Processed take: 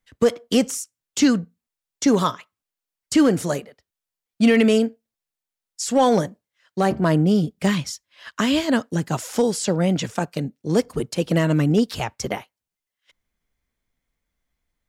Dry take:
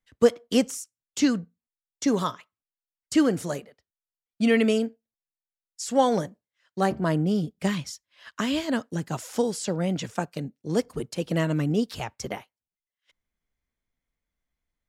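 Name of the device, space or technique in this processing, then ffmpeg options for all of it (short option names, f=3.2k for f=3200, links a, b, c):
limiter into clipper: -af "alimiter=limit=-14dB:level=0:latency=1:release=34,asoftclip=type=hard:threshold=-15.5dB,volume=6.5dB"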